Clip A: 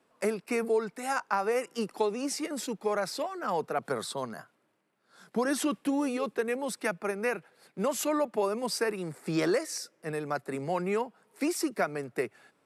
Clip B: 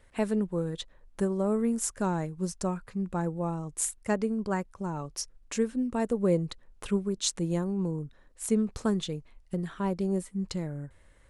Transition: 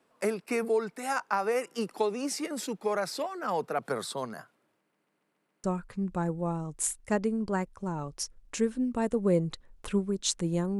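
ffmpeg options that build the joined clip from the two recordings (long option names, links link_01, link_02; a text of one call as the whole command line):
ffmpeg -i cue0.wav -i cue1.wav -filter_complex "[0:a]apad=whole_dur=10.79,atrim=end=10.79,asplit=6[link_01][link_02][link_03][link_04][link_05][link_06];[link_01]atrim=end=4.942[link_07];[link_02]atrim=start=4.798:end=4.942[link_08];[link_03]atrim=start=4.798:end=4.942[link_09];[link_04]atrim=start=4.798:end=4.942[link_10];[link_05]atrim=start=4.798:end=4.942[link_11];[link_06]atrim=start=4.798:end=4.942[link_12];[1:a]atrim=start=2.618:end=7.77[link_13];[link_07][link_08]acrossfade=duration=0.004:curve1=hsin:curve2=hsin[link_14];[link_14][link_09]acrossfade=duration=0.004:curve1=hsin:curve2=hsin[link_15];[link_15][link_10]acrossfade=duration=0.004:curve1=hsin:curve2=hsin[link_16];[link_16][link_11]acrossfade=duration=0.004:curve1=hsin:curve2=hsin[link_17];[link_17][link_12]acrossfade=duration=0.004:curve1=hsin:curve2=hsin[link_18];[link_18][link_13]acrossfade=duration=0.004:curve1=hsin:curve2=hsin" out.wav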